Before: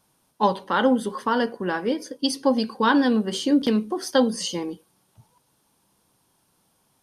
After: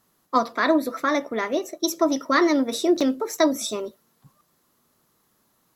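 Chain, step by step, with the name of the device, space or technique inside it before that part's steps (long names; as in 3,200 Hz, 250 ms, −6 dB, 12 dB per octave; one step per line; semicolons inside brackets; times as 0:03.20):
nightcore (speed change +22%)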